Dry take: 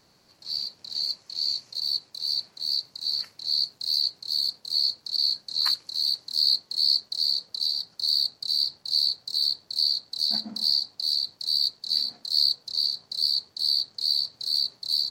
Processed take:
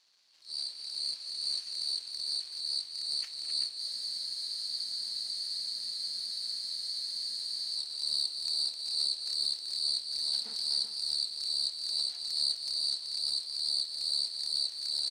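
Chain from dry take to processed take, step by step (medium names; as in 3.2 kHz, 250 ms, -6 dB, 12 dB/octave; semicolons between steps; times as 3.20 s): half-wave rectifier; in parallel at -1 dB: peak limiter -20 dBFS, peak gain reduction 10 dB; on the sum: band-pass filter 4 kHz, Q 1.1; transient shaper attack -8 dB, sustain +9 dB; on a send: multi-tap echo 210/258/381 ms -13/-7.5/-7.5 dB; on the sum: spectral freeze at 3.81 s, 3.95 s; trim -4.5 dB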